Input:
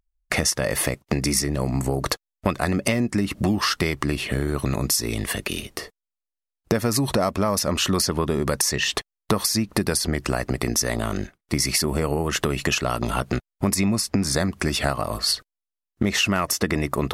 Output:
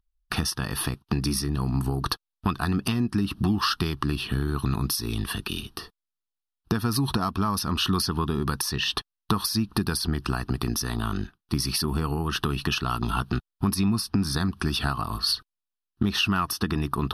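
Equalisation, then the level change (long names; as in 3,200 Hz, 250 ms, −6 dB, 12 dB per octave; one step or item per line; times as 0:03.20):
linear-phase brick-wall low-pass 13,000 Hz
phaser with its sweep stopped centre 2,100 Hz, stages 6
0.0 dB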